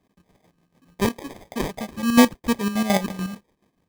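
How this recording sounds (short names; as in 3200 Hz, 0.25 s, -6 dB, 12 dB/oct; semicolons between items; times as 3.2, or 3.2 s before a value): phasing stages 6, 2.8 Hz, lowest notch 480–1600 Hz; chopped level 6.9 Hz, depth 60%, duty 50%; aliases and images of a low sample rate 1400 Hz, jitter 0%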